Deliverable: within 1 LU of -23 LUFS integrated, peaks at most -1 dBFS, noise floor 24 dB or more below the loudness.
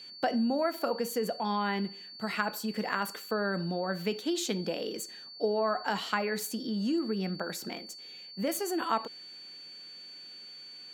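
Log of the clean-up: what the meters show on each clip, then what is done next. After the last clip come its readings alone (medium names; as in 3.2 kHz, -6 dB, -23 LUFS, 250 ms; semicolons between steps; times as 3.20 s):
steady tone 4.5 kHz; tone level -45 dBFS; loudness -32.5 LUFS; peak level -14.5 dBFS; loudness target -23.0 LUFS
-> band-stop 4.5 kHz, Q 30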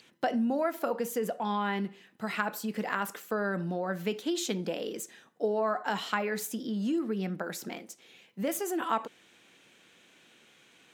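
steady tone not found; loudness -32.5 LUFS; peak level -14.5 dBFS; loudness target -23.0 LUFS
-> trim +9.5 dB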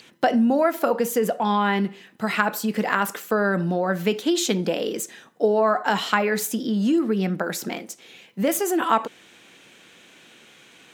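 loudness -23.0 LUFS; peak level -5.0 dBFS; noise floor -52 dBFS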